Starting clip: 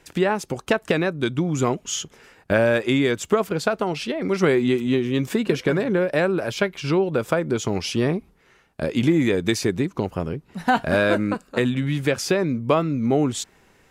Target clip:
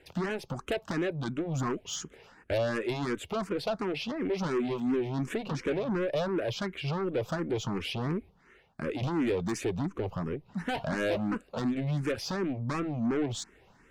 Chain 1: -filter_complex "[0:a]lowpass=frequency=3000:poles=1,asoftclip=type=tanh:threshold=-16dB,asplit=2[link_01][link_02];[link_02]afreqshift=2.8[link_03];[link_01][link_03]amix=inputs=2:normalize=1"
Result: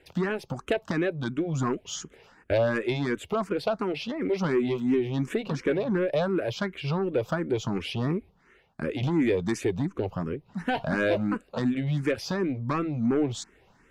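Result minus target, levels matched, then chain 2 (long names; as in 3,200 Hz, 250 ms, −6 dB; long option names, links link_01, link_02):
soft clipping: distortion −7 dB
-filter_complex "[0:a]lowpass=frequency=3000:poles=1,asoftclip=type=tanh:threshold=-24dB,asplit=2[link_01][link_02];[link_02]afreqshift=2.8[link_03];[link_01][link_03]amix=inputs=2:normalize=1"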